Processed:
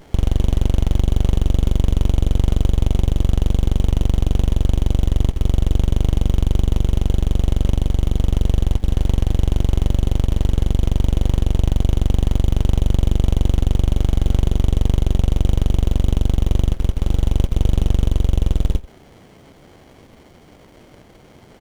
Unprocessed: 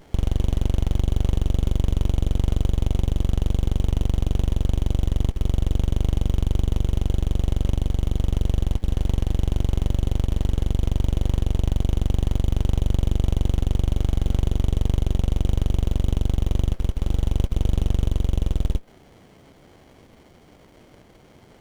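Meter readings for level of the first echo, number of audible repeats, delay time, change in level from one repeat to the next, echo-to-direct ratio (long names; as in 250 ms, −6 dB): −19.5 dB, 1, 89 ms, repeats not evenly spaced, −19.5 dB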